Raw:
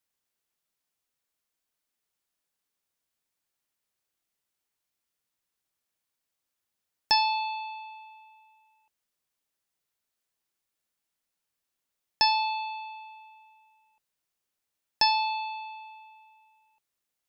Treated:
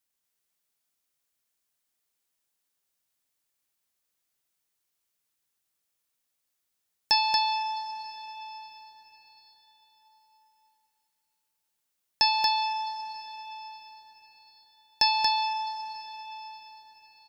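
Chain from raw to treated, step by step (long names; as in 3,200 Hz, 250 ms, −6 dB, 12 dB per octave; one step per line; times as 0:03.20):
high-shelf EQ 4,100 Hz +5.5 dB
single-tap delay 232 ms −3.5 dB
on a send at −10 dB: convolution reverb RT60 5.2 s, pre-delay 113 ms
on the sum: level −2 dB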